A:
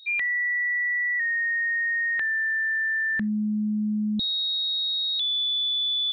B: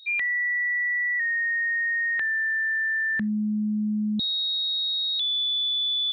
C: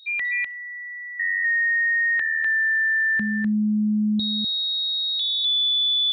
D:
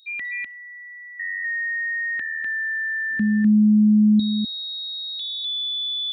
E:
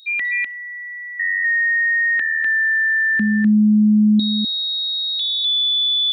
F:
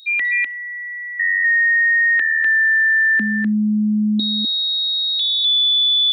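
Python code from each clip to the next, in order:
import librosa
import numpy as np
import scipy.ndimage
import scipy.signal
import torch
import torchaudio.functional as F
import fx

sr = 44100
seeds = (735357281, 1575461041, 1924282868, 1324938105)

y1 = scipy.signal.sosfilt(scipy.signal.butter(2, 57.0, 'highpass', fs=sr, output='sos'), x)
y2 = y1 + 10.0 ** (-3.5 / 20.0) * np.pad(y1, (int(250 * sr / 1000.0), 0))[:len(y1)]
y3 = fx.graphic_eq_10(y2, sr, hz=(125, 250, 500, 1000, 2000, 4000), db=(-4, 7, -6, -10, -4, -8))
y3 = y3 * librosa.db_to_amplitude(3.0)
y4 = fx.low_shelf(y3, sr, hz=270.0, db=-11.0)
y4 = y4 * librosa.db_to_amplitude(8.5)
y5 = scipy.signal.sosfilt(scipy.signal.butter(4, 250.0, 'highpass', fs=sr, output='sos'), y4)
y5 = y5 * librosa.db_to_amplitude(2.5)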